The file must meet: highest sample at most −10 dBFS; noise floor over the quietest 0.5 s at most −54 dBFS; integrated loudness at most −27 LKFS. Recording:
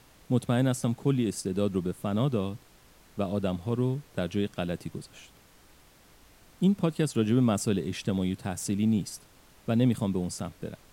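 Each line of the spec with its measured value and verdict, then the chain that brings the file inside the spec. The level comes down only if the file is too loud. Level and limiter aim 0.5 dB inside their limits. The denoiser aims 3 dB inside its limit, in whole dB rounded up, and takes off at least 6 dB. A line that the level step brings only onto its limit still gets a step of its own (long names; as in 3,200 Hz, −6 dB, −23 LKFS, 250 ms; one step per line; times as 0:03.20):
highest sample −12.0 dBFS: in spec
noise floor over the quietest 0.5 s −57 dBFS: in spec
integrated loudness −29.0 LKFS: in spec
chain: no processing needed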